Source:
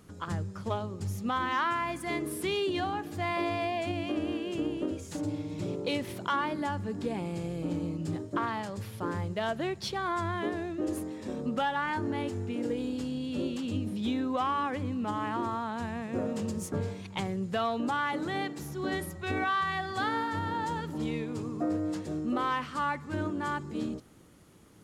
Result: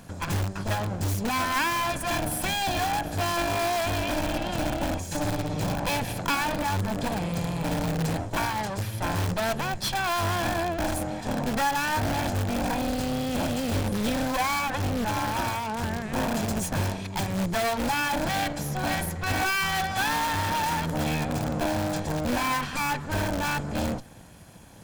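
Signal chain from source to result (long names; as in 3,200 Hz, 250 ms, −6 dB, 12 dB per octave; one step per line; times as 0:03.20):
lower of the sound and its delayed copy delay 1.2 ms
in parallel at −4 dB: wrap-around overflow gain 31 dB
on the sum: level +6 dB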